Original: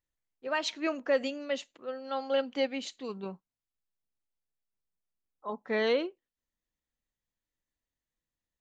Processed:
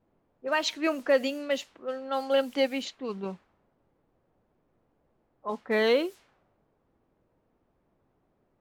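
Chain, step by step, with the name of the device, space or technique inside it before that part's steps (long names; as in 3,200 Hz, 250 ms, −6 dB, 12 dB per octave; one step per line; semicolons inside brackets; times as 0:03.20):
cassette deck with a dynamic noise filter (white noise bed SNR 24 dB; low-pass that shuts in the quiet parts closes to 460 Hz, open at −29.5 dBFS)
level +4 dB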